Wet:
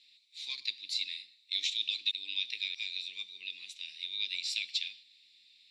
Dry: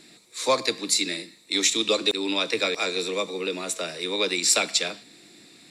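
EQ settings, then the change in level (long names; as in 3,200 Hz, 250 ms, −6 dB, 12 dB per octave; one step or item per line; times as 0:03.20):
inverse Chebyshev high-pass filter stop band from 1,500 Hz, stop band 40 dB
high-frequency loss of the air 340 metres
+3.0 dB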